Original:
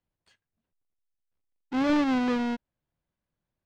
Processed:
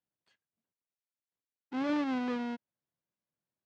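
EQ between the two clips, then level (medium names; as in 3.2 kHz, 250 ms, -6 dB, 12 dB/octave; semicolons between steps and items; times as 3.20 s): high-pass 150 Hz 12 dB/octave; distance through air 52 m; -7.0 dB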